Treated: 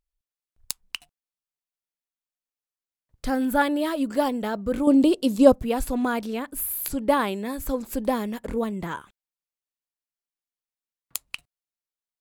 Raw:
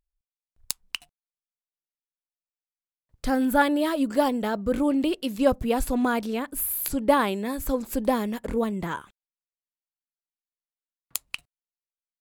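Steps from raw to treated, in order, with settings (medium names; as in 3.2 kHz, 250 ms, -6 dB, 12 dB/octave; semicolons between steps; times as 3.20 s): 4.87–5.52 s: graphic EQ 125/250/500/1000/2000/4000/8000 Hz +5/+6/+6/+4/-6/+4/+7 dB; trim -1 dB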